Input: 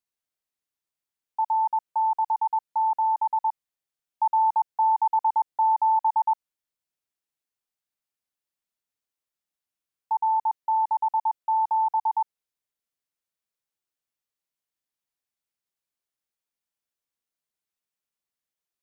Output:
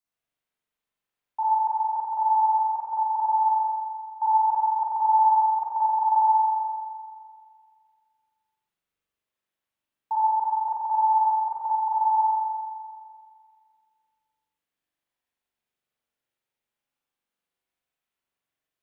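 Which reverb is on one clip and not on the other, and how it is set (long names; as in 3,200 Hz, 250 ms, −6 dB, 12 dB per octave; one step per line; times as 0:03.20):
spring reverb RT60 2 s, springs 42 ms, chirp 50 ms, DRR −8 dB
level −2.5 dB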